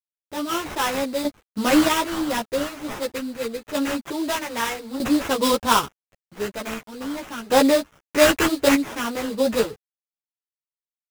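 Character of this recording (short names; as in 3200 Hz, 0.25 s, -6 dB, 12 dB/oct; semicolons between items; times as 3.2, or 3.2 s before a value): aliases and images of a low sample rate 4400 Hz, jitter 20%; random-step tremolo 1.6 Hz, depth 80%; a quantiser's noise floor 10-bit, dither none; a shimmering, thickened sound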